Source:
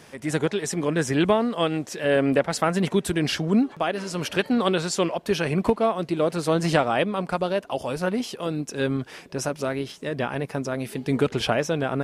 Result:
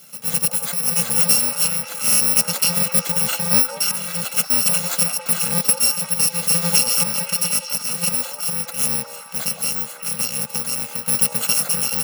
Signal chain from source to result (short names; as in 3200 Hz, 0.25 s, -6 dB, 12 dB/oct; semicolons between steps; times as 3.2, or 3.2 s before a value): FFT order left unsorted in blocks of 128 samples; HPF 160 Hz 24 dB/oct; delay with a stepping band-pass 0.178 s, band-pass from 690 Hz, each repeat 0.7 oct, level -1.5 dB; gain +4 dB